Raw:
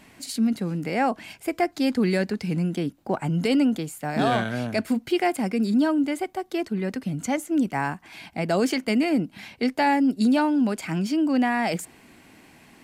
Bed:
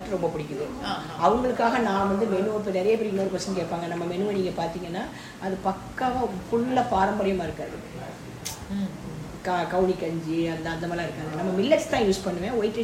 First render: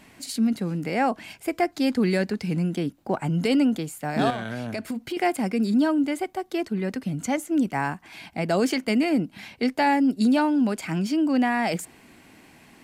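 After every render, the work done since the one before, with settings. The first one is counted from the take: 4.30–5.17 s: compression, threshold -26 dBFS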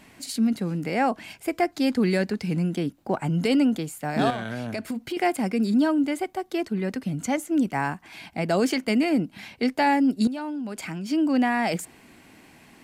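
10.27–11.11 s: compression 8:1, threshold -29 dBFS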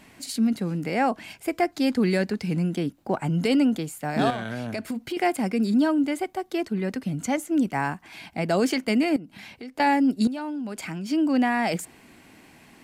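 9.16–9.80 s: compression 4:1, threshold -38 dBFS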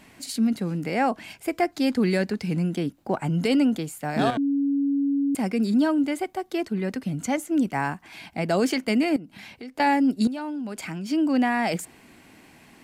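4.37–5.35 s: bleep 280 Hz -20 dBFS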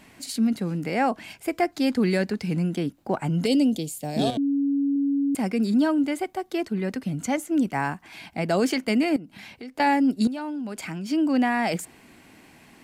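3.46–4.96 s: FFT filter 610 Hz 0 dB, 1.4 kHz -18 dB, 3.5 kHz +4 dB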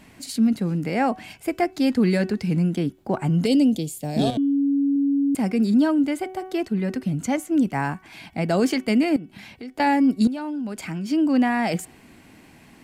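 bass shelf 250 Hz +6 dB; de-hum 375.1 Hz, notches 9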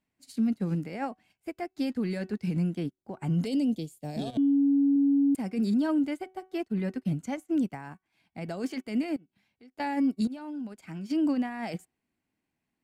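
peak limiter -19.5 dBFS, peak gain reduction 9.5 dB; upward expansion 2.5:1, over -45 dBFS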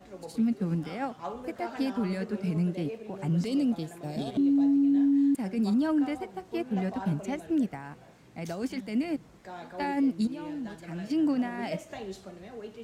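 add bed -17 dB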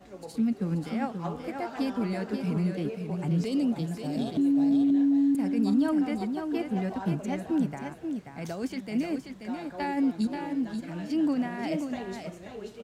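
delay 533 ms -6.5 dB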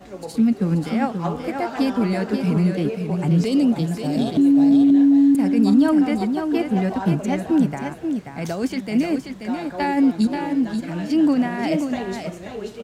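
trim +9 dB

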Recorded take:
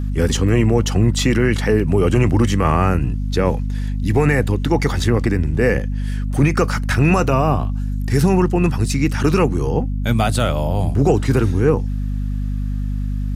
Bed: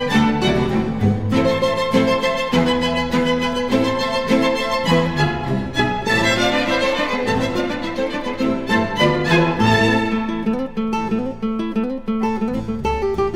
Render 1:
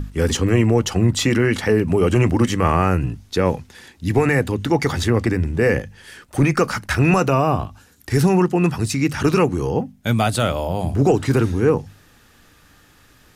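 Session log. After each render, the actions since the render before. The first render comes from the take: hum notches 50/100/150/200/250 Hz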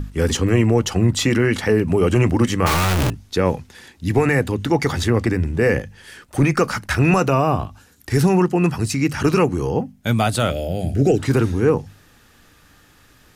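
2.66–3.10 s: one-bit comparator; 8.49–9.96 s: band-stop 3.6 kHz; 10.50–11.19 s: Butterworth band-stop 1 kHz, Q 1.3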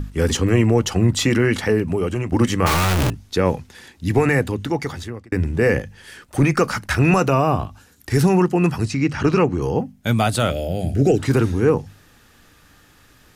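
1.58–2.32 s: fade out, to -11.5 dB; 4.35–5.32 s: fade out; 8.85–9.62 s: distance through air 92 m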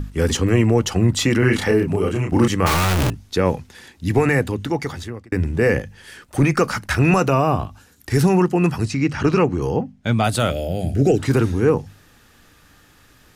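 1.39–2.48 s: doubling 31 ms -3 dB; 9.76–10.24 s: distance through air 85 m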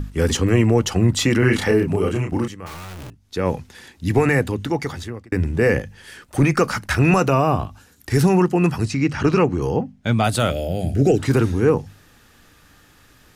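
2.17–3.58 s: dip -17 dB, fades 0.38 s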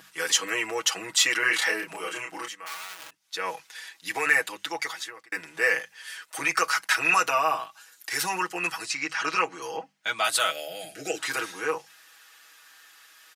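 high-pass 1.2 kHz 12 dB/octave; comb 6.2 ms, depth 81%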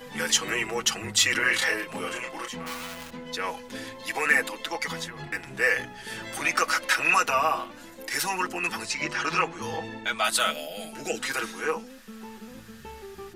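add bed -22.5 dB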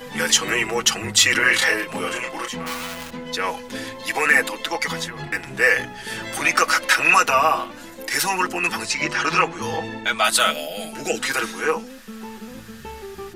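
trim +6.5 dB; peak limiter -3 dBFS, peak gain reduction 2 dB

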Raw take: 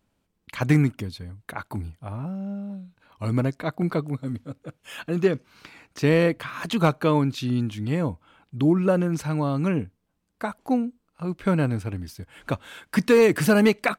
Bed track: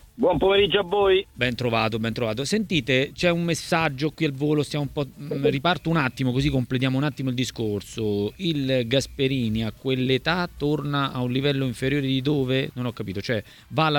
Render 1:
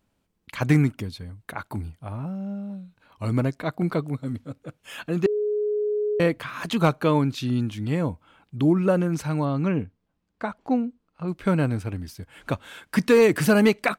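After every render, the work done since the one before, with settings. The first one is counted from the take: 5.26–6.20 s: bleep 419 Hz -21.5 dBFS; 9.45–11.28 s: distance through air 98 m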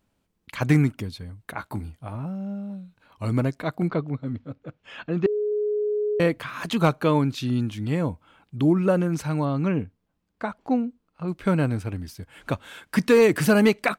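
1.56–2.15 s: doubling 16 ms -8 dB; 3.88–5.52 s: distance through air 180 m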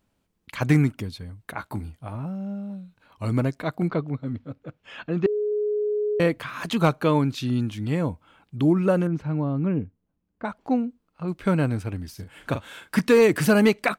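9.07–10.45 s: FFT filter 300 Hz 0 dB, 820 Hz -6 dB, 2.9 kHz -10 dB, 9.3 kHz -28 dB; 12.09–13.01 s: doubling 42 ms -8 dB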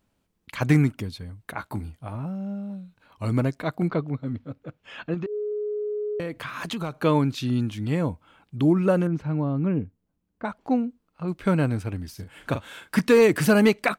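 5.14–7.02 s: compression 5:1, threshold -27 dBFS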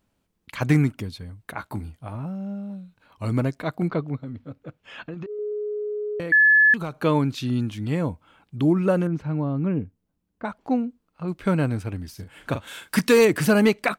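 4.23–5.39 s: compression, threshold -30 dBFS; 6.32–6.74 s: bleep 1.72 kHz -12 dBFS; 12.67–13.25 s: treble shelf 3.1 kHz +8.5 dB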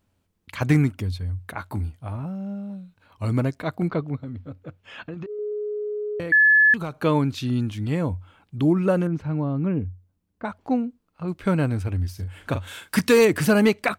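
peaking EQ 91 Hz +13 dB 0.22 oct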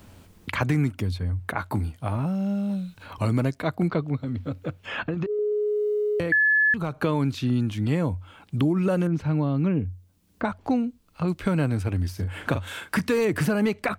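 peak limiter -14.5 dBFS, peak gain reduction 6.5 dB; three bands compressed up and down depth 70%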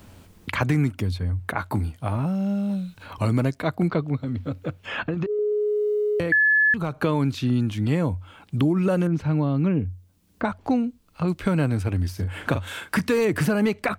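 trim +1.5 dB

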